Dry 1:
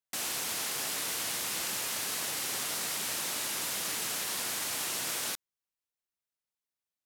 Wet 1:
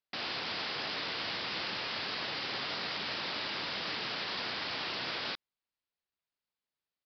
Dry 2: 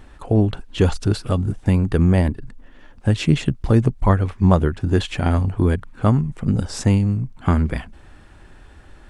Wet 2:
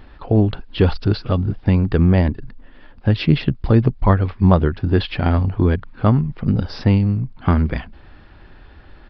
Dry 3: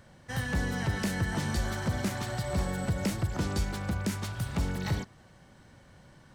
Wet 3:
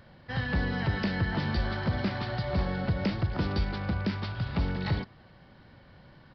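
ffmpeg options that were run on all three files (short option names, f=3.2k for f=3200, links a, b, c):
-af "aresample=11025,aresample=44100,volume=1.5dB"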